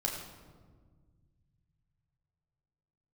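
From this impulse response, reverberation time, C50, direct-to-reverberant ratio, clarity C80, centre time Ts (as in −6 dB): 1.6 s, 4.0 dB, −1.5 dB, 5.5 dB, 48 ms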